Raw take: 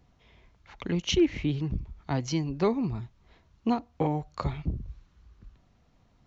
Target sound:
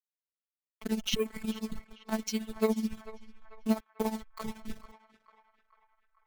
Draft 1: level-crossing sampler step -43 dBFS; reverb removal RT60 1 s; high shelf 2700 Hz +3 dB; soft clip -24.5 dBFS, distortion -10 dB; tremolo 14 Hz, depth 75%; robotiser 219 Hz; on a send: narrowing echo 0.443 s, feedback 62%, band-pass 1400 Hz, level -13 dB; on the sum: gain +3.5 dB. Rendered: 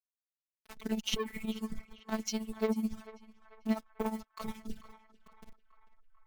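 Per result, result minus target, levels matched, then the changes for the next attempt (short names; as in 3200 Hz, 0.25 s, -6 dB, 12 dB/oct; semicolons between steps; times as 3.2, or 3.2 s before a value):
soft clip: distortion +14 dB; level-crossing sampler: distortion -7 dB
change: soft clip -14 dBFS, distortion -24 dB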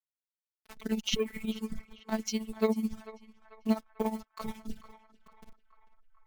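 level-crossing sampler: distortion -7 dB
change: level-crossing sampler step -35.5 dBFS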